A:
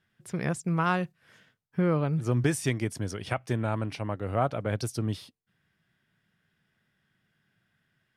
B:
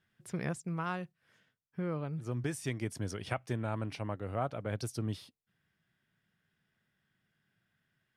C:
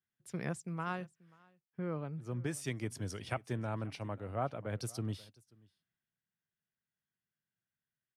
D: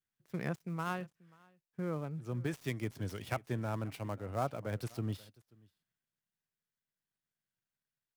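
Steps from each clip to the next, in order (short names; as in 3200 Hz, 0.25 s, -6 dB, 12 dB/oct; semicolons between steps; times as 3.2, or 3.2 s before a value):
vocal rider within 5 dB 0.5 s; gain -7.5 dB
echo 0.536 s -20 dB; three-band expander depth 40%; gain -2.5 dB
switching dead time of 0.063 ms; gain +1 dB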